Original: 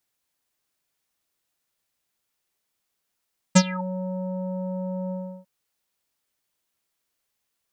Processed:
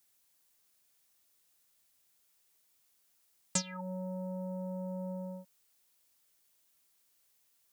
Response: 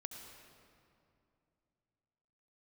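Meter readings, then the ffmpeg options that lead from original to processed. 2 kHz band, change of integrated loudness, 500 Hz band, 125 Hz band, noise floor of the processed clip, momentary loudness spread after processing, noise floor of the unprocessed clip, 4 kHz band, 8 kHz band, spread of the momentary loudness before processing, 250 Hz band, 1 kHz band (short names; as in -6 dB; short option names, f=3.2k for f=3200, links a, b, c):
-15.0 dB, -11.5 dB, -10.5 dB, -13.0 dB, -72 dBFS, 7 LU, -79 dBFS, -10.5 dB, -5.5 dB, 13 LU, -12.5 dB, -13.0 dB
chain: -filter_complex "[0:a]acrossover=split=260|4400[a][b][c];[a]acompressor=threshold=-43dB:ratio=4[d];[b]acompressor=threshold=-43dB:ratio=4[e];[c]acompressor=threshold=-40dB:ratio=4[f];[d][e][f]amix=inputs=3:normalize=0,highshelf=f=4.7k:g=9"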